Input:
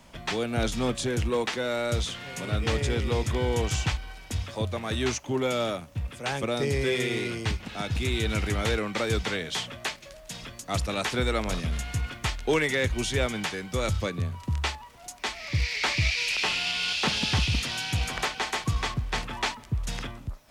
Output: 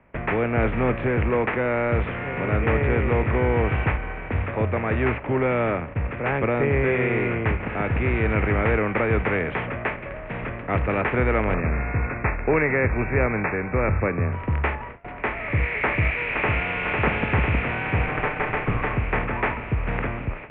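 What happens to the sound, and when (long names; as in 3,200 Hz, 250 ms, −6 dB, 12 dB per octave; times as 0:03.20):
0:11.54–0:14.33: linear-phase brick-wall low-pass 2,700 Hz
0:15.85–0:16.75: delay throw 500 ms, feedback 70%, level −5.5 dB
0:18.06–0:18.93: lower of the sound and its delayed copy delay 6.7 ms
whole clip: compressor on every frequency bin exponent 0.6; noise gate with hold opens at −25 dBFS; Butterworth low-pass 2,400 Hz 48 dB per octave; level +2 dB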